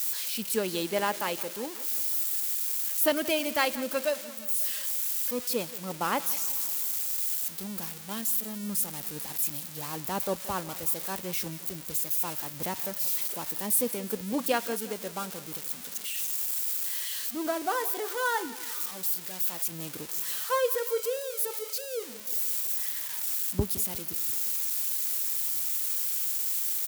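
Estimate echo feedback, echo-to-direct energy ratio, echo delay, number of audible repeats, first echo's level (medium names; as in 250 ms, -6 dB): 59%, -15.5 dB, 176 ms, 4, -17.5 dB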